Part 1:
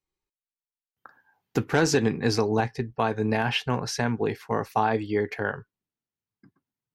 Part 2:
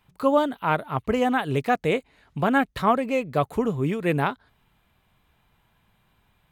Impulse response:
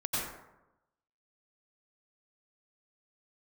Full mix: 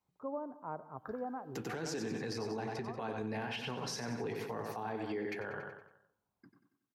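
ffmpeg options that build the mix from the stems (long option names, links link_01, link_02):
-filter_complex "[0:a]alimiter=limit=-16dB:level=0:latency=1:release=335,flanger=delay=1:depth=9.5:regen=-64:speed=1.1:shape=triangular,volume=2dB,asplit=4[link_01][link_02][link_03][link_04];[link_02]volume=-24dB[link_05];[link_03]volume=-7.5dB[link_06];[1:a]lowpass=frequency=1100:width=0.5412,lowpass=frequency=1100:width=1.3066,volume=-17dB,asplit=2[link_07][link_08];[link_08]volume=-22.5dB[link_09];[link_04]apad=whole_len=287288[link_10];[link_07][link_10]sidechaincompress=threshold=-33dB:ratio=8:attack=16:release=1230[link_11];[2:a]atrim=start_sample=2205[link_12];[link_05][link_09]amix=inputs=2:normalize=0[link_13];[link_13][link_12]afir=irnorm=-1:irlink=0[link_14];[link_06]aecho=0:1:93|186|279|372|465|558:1|0.45|0.202|0.0911|0.041|0.0185[link_15];[link_01][link_11][link_14][link_15]amix=inputs=4:normalize=0,highpass=frequency=210:poles=1,acrossover=split=450[link_16][link_17];[link_17]acompressor=threshold=-33dB:ratio=6[link_18];[link_16][link_18]amix=inputs=2:normalize=0,alimiter=level_in=6dB:limit=-24dB:level=0:latency=1:release=82,volume=-6dB"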